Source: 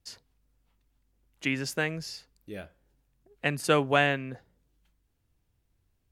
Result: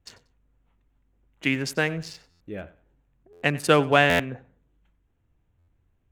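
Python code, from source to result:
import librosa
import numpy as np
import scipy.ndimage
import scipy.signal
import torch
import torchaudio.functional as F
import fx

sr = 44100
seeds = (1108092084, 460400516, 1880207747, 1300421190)

p1 = fx.wiener(x, sr, points=9)
p2 = p1 + fx.echo_feedback(p1, sr, ms=93, feedback_pct=25, wet_db=-19.0, dry=0)
p3 = fx.buffer_glitch(p2, sr, at_s=(2.3, 3.32, 4.09, 5.58), block=512, repeats=8)
y = F.gain(torch.from_numpy(p3), 5.0).numpy()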